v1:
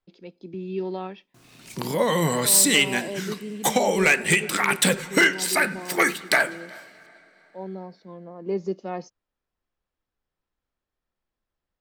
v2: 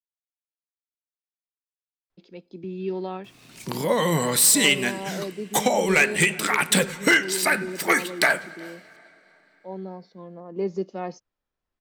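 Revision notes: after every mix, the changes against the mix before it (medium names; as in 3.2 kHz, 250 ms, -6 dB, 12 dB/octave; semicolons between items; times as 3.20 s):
speech: entry +2.10 s; background: entry +1.90 s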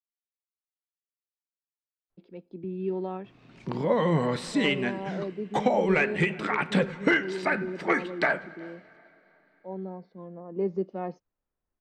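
master: add tape spacing loss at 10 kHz 35 dB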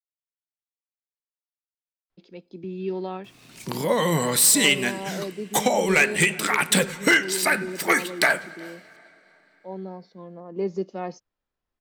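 master: remove tape spacing loss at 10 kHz 35 dB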